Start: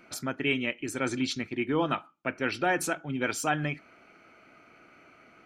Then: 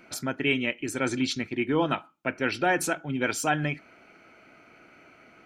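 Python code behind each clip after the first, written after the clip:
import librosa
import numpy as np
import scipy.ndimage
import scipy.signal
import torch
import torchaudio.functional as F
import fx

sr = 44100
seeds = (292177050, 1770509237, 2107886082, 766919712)

y = fx.notch(x, sr, hz=1200.0, q=12.0)
y = y * librosa.db_to_amplitude(2.5)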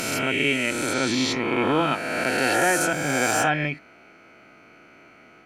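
y = fx.spec_swells(x, sr, rise_s=2.11)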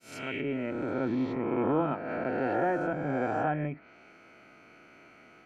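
y = fx.fade_in_head(x, sr, length_s=0.6)
y = fx.env_lowpass_down(y, sr, base_hz=960.0, full_db=-22.5)
y = y * librosa.db_to_amplitude(-4.5)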